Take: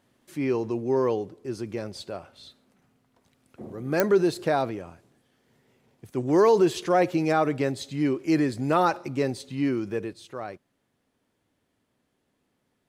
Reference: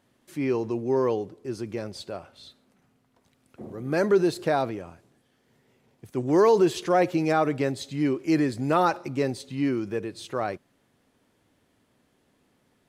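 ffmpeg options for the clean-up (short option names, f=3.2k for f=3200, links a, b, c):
-af "adeclick=t=4,asetnsamples=n=441:p=0,asendcmd='10.13 volume volume 7dB',volume=0dB"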